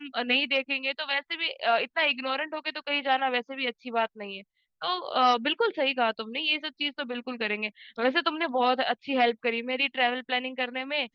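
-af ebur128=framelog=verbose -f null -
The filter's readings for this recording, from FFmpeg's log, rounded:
Integrated loudness:
  I:         -27.3 LUFS
  Threshold: -37.4 LUFS
Loudness range:
  LRA:         1.5 LU
  Threshold: -47.6 LUFS
  LRA low:   -28.3 LUFS
  LRA high:  -26.8 LUFS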